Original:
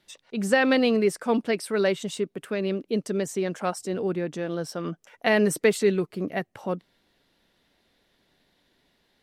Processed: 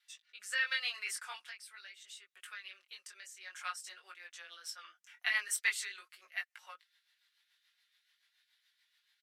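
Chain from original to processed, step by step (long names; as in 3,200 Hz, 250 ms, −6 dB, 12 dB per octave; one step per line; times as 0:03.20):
high-pass filter 1,400 Hz 24 dB per octave
comb filter 5.6 ms, depth 51%
0:01.41–0:03.41: downward compressor 6 to 1, threshold −40 dBFS, peak gain reduction 12.5 dB
chorus effect 0.46 Hz, delay 17.5 ms, depth 6.1 ms
rotating-speaker cabinet horn 0.65 Hz, later 7 Hz, at 0:03.28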